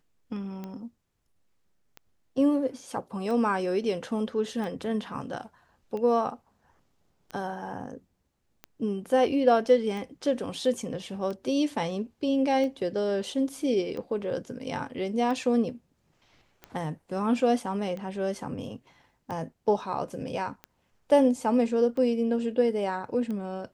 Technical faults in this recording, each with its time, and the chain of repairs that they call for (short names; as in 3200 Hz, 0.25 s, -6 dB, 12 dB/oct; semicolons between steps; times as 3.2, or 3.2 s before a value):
tick 45 rpm -25 dBFS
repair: de-click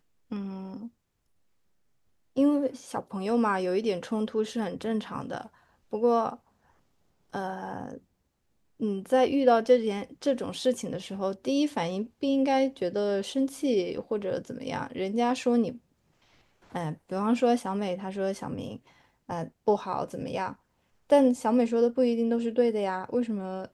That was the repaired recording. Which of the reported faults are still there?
none